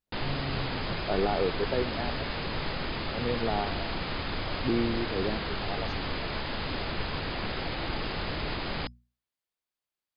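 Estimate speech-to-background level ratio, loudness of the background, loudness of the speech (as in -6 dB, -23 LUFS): 0.0 dB, -33.5 LUFS, -33.5 LUFS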